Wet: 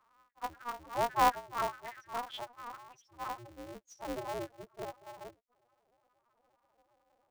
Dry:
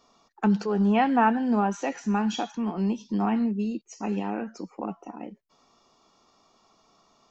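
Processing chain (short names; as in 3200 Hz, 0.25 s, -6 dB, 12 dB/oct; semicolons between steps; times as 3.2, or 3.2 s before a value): high-pass sweep 1100 Hz -> 520 Hz, 3.3–3.8; loudest bins only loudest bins 1; polarity switched at an audio rate 120 Hz; gain +1 dB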